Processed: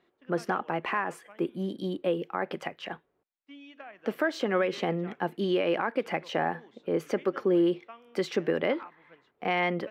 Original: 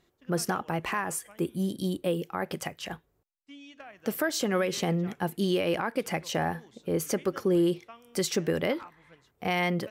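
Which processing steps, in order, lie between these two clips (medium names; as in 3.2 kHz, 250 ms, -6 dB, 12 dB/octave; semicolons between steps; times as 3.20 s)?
three-band isolator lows -18 dB, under 200 Hz, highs -22 dB, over 3.5 kHz; trim +1.5 dB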